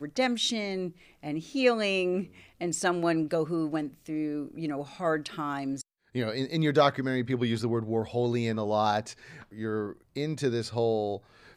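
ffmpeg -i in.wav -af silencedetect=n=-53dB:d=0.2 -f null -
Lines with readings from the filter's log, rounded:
silence_start: 5.82
silence_end: 6.14 | silence_duration: 0.33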